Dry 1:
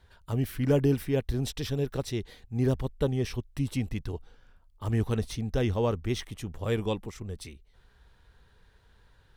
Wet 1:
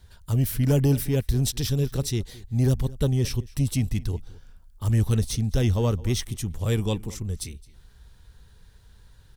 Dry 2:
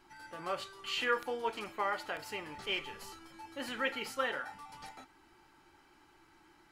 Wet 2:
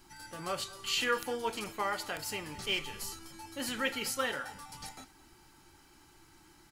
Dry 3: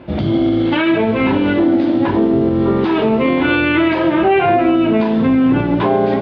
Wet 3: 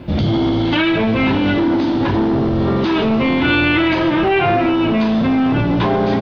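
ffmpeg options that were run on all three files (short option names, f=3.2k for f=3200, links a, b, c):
-filter_complex "[0:a]bass=f=250:g=9,treble=f=4k:g=13,acrossover=split=960[a][b];[a]asoftclip=type=tanh:threshold=-13dB[c];[c][b]amix=inputs=2:normalize=0,asplit=2[d][e];[e]adelay=215.7,volume=-20dB,highshelf=f=4k:g=-4.85[f];[d][f]amix=inputs=2:normalize=0"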